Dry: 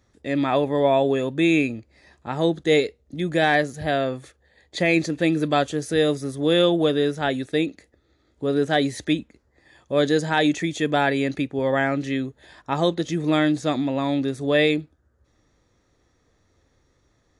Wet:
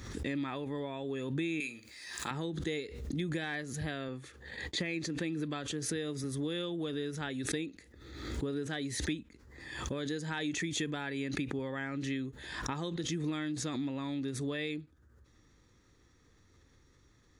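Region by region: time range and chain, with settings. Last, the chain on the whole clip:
1.6–2.31 tilt +4.5 dB/oct + flutter echo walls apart 8.1 m, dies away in 0.22 s
4.08–6.24 HPF 87 Hz + high shelf 5900 Hz -5.5 dB + expander -54 dBFS
whole clip: compressor 6:1, threshold -32 dBFS; bell 650 Hz -11.5 dB 0.71 oct; backwards sustainer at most 49 dB/s

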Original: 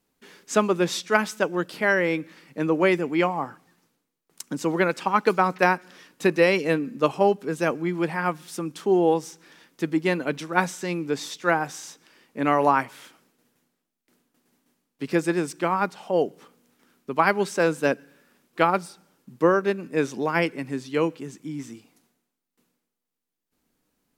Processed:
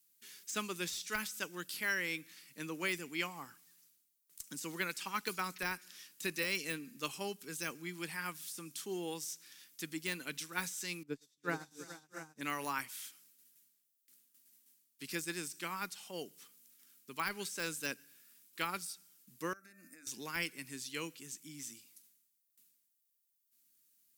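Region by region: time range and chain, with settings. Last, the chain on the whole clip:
11.03–12.41 tilt shelf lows +9.5 dB, about 1400 Hz + tapped delay 0.113/0.343/0.423/0.651/0.689 s -13/-9.5/-6.5/-10/-5 dB + upward expander 2.5:1, over -34 dBFS
19.53–20.07 de-hum 150.3 Hz, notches 17 + compressor 10:1, threshold -34 dBFS + fixed phaser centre 640 Hz, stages 8
whole clip: RIAA curve recording; de-esser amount 55%; passive tone stack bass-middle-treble 6-0-2; gain +7.5 dB

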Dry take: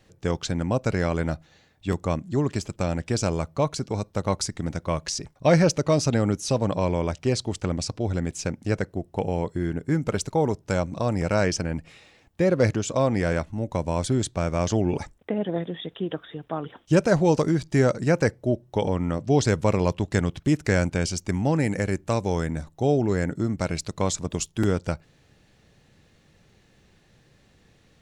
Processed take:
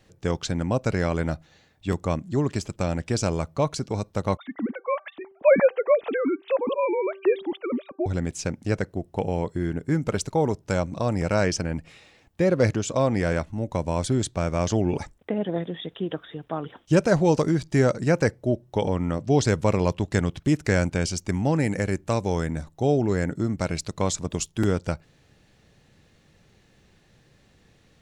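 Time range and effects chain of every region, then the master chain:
4.37–8.06 sine-wave speech + de-hum 388.8 Hz, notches 4
whole clip: dry

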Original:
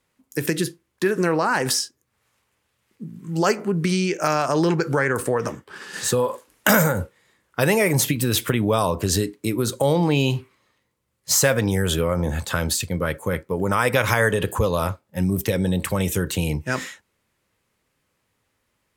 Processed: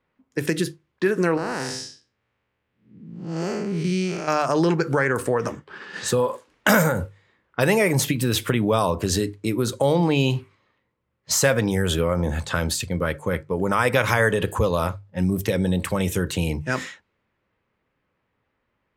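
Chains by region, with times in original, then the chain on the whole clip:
1.37–4.28 time blur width 0.232 s + bell 1100 Hz -4.5 dB 1.1 oct
whole clip: low-pass opened by the level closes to 2400 Hz, open at -20.5 dBFS; high shelf 7800 Hz -6.5 dB; notches 50/100/150 Hz

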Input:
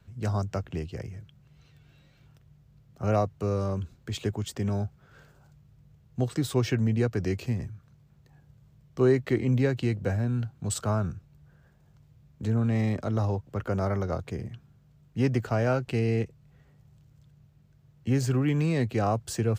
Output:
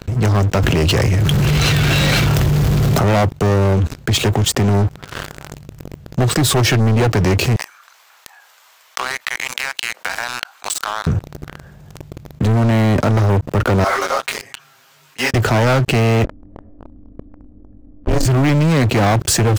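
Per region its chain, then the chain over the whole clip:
0.56–3.03 low shelf 240 Hz -6.5 dB + fast leveller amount 100%
7.56–11.07 HPF 900 Hz 24 dB/oct + compressor 16:1, threshold -45 dBFS
13.84–15.34 HPF 1100 Hz + comb 7.4 ms, depth 87% + detuned doubles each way 29 cents
16.24–18.26 low-pass opened by the level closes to 430 Hz, open at -21 dBFS + ring modulator 150 Hz + comb 1.7 ms, depth 37%
whole clip: sample leveller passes 5; fast leveller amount 50%; gain +1.5 dB

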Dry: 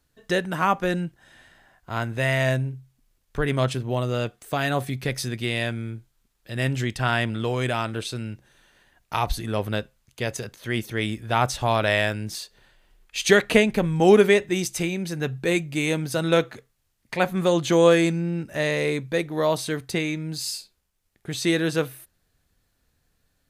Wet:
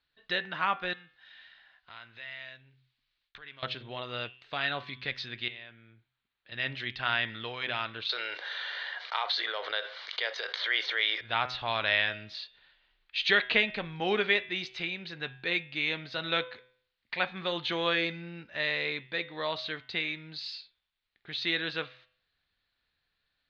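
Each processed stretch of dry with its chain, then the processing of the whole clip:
0.93–3.63 compressor, threshold -36 dBFS + gate with hold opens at -58 dBFS, closes at -67 dBFS + tilt shelf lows -5 dB, about 1200 Hz
5.48–6.52 HPF 61 Hz + air absorption 210 m + compressor 4:1, threshold -38 dBFS
8.09–11.21 elliptic band-pass 470–6100 Hz + notch 2600 Hz, Q 5.5 + fast leveller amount 70%
whole clip: elliptic low-pass 4100 Hz, stop band 60 dB; tilt shelf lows -9.5 dB; de-hum 126.1 Hz, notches 29; gain -7.5 dB

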